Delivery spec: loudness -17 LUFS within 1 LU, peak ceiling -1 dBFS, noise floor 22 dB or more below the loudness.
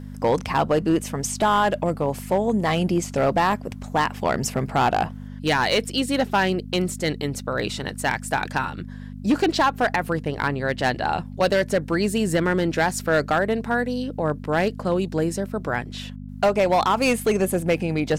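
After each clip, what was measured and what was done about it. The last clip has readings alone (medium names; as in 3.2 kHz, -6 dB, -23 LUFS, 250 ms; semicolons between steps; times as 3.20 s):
clipped samples 1.4%; clipping level -13.0 dBFS; hum 50 Hz; highest harmonic 250 Hz; hum level -34 dBFS; loudness -23.0 LUFS; peak level -13.0 dBFS; loudness target -17.0 LUFS
-> clip repair -13 dBFS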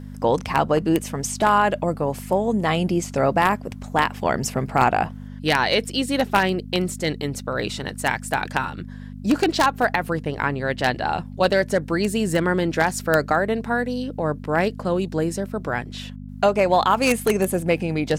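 clipped samples 0.0%; hum 50 Hz; highest harmonic 250 Hz; hum level -34 dBFS
-> de-hum 50 Hz, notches 5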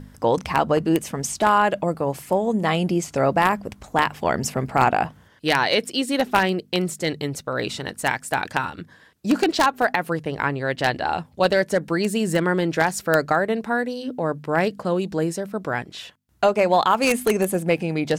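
hum not found; loudness -22.5 LUFS; peak level -3.5 dBFS; loudness target -17.0 LUFS
-> trim +5.5 dB; peak limiter -1 dBFS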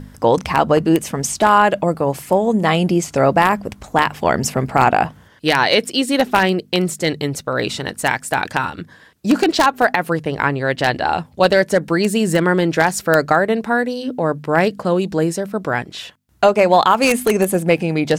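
loudness -17.0 LUFS; peak level -1.0 dBFS; noise floor -47 dBFS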